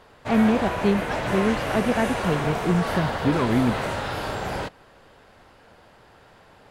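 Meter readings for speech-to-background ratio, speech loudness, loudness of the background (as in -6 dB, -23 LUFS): 3.5 dB, -24.0 LUFS, -27.5 LUFS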